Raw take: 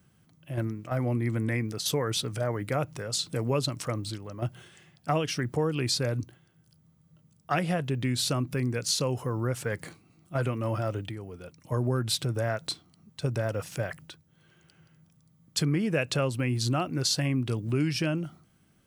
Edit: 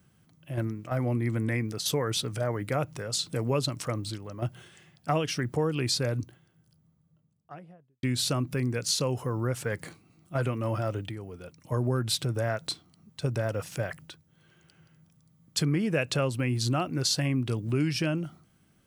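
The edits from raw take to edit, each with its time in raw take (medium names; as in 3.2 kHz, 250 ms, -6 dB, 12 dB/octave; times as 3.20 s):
6.17–8.03 s: studio fade out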